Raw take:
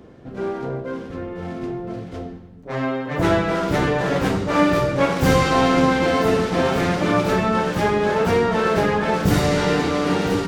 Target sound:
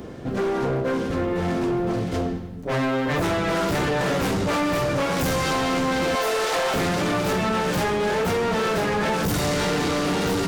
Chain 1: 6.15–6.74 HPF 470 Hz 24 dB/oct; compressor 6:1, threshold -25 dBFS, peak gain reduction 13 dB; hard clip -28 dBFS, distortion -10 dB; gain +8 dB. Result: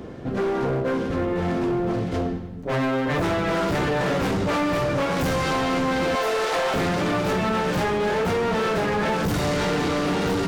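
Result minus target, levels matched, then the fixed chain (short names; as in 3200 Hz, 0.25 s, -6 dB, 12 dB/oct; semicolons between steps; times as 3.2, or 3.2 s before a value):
8000 Hz band -4.5 dB
6.15–6.74 HPF 470 Hz 24 dB/oct; compressor 6:1, threshold -25 dBFS, peak gain reduction 13 dB; high shelf 5400 Hz +9 dB; hard clip -28 dBFS, distortion -10 dB; gain +8 dB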